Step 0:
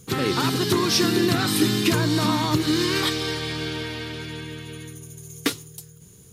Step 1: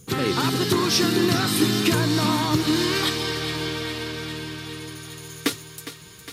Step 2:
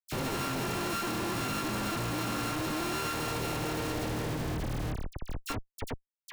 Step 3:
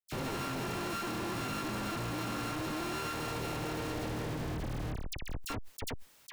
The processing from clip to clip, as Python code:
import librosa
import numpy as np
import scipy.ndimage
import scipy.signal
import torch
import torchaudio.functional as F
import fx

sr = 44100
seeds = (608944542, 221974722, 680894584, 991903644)

y1 = fx.echo_thinned(x, sr, ms=409, feedback_pct=76, hz=320.0, wet_db=-12.0)
y2 = np.r_[np.sort(y1[:len(y1) // 32 * 32].reshape(-1, 32), axis=1).ravel(), y1[len(y1) // 32 * 32:]]
y2 = fx.schmitt(y2, sr, flips_db=-28.5)
y2 = fx.dispersion(y2, sr, late='lows', ms=42.0, hz=2300.0)
y2 = y2 * 10.0 ** (-8.5 / 20.0)
y3 = fx.high_shelf(y2, sr, hz=5700.0, db=-4.0)
y3 = fx.sustainer(y3, sr, db_per_s=33.0)
y3 = y3 * 10.0 ** (-3.5 / 20.0)